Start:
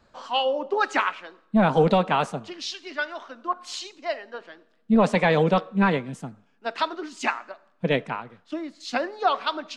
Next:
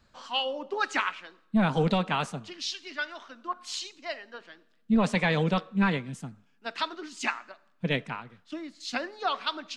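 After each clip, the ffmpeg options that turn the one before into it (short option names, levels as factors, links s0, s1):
-af "equalizer=f=590:w=0.53:g=-9"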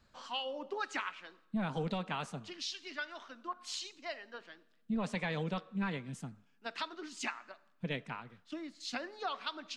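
-af "acompressor=threshold=0.02:ratio=2,volume=0.631"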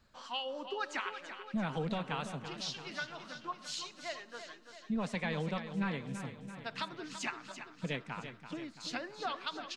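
-af "aecho=1:1:336|672|1008|1344|1680|2016|2352:0.316|0.19|0.114|0.0683|0.041|0.0246|0.0148"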